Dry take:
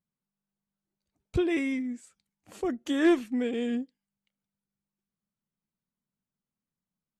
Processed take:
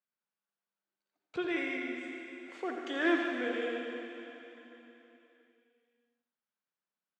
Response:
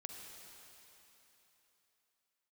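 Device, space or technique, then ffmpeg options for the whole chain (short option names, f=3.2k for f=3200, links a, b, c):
station announcement: -filter_complex "[0:a]highpass=490,lowpass=3.9k,equalizer=f=1.5k:t=o:w=0.37:g=6,aecho=1:1:84.55|148.7:0.355|0.282[a];[1:a]atrim=start_sample=2205[b];[a][b]afir=irnorm=-1:irlink=0,volume=3.5dB"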